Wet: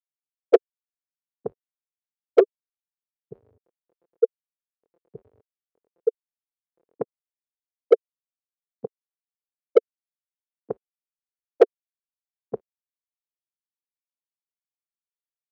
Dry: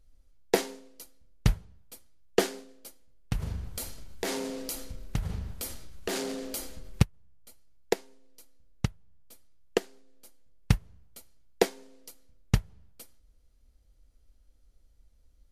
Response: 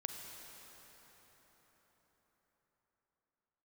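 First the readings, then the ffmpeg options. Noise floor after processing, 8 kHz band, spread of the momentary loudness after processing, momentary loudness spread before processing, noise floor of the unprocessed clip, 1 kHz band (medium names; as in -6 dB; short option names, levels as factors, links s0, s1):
under -85 dBFS, under -25 dB, 17 LU, 22 LU, -62 dBFS, +1.0 dB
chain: -filter_complex "[0:a]afftfilt=real='re*gte(hypot(re,im),0.282)':imag='im*gte(hypot(re,im),0.282)':win_size=1024:overlap=0.75,asplit=2[s0][s1];[s1]highpass=f=720:p=1,volume=35.5,asoftclip=type=tanh:threshold=0.447[s2];[s0][s2]amix=inputs=2:normalize=0,lowpass=f=2500:p=1,volume=0.501,highpass=f=450:t=q:w=4,volume=0.596"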